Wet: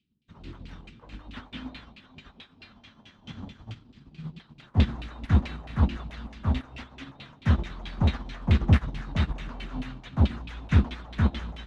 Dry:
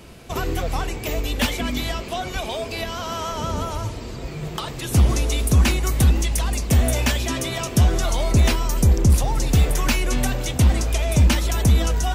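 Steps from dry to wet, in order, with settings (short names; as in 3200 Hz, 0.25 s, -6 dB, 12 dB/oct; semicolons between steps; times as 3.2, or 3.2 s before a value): Chebyshev band-stop 220–3500 Hz, order 3; high shelf 8000 Hz +11 dB; notches 60/120/180/240 Hz; narrowing echo 0.208 s, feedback 70%, band-pass 1800 Hz, level -7.5 dB; overdrive pedal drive 27 dB, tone 1900 Hz, clips at -9 dBFS; thinning echo 0.493 s, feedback 63%, high-pass 360 Hz, level -11 dB; LFO low-pass saw down 4.4 Hz 660–2400 Hz; speed mistake 24 fps film run at 25 fps; upward expander 2.5:1, over -41 dBFS; gain +1.5 dB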